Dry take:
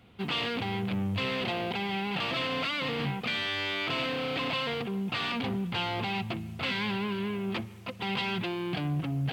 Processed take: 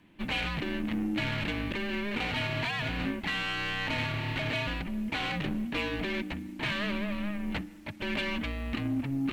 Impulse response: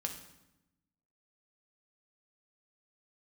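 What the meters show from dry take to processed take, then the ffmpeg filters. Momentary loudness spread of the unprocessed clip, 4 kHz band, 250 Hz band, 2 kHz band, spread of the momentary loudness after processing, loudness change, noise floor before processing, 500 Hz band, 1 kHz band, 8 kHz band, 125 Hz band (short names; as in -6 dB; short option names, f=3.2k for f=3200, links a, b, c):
3 LU, -3.5 dB, +1.0 dB, +0.5 dB, 4 LU, -1.0 dB, -44 dBFS, -3.5 dB, -4.0 dB, +1.0 dB, -1.5 dB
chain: -af "afreqshift=-410,aeval=exprs='0.119*(cos(1*acos(clip(val(0)/0.119,-1,1)))-cos(1*PI/2))+0.00376*(cos(7*acos(clip(val(0)/0.119,-1,1)))-cos(7*PI/2))':c=same"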